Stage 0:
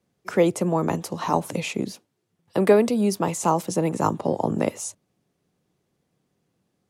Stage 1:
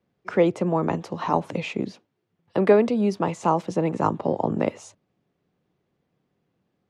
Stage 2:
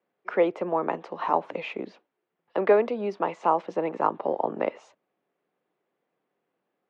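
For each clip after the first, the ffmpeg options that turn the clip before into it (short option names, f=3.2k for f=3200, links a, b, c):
-af "lowpass=5.5k,bass=f=250:g=-1,treble=f=4k:g=-8"
-af "highpass=430,lowpass=2.6k"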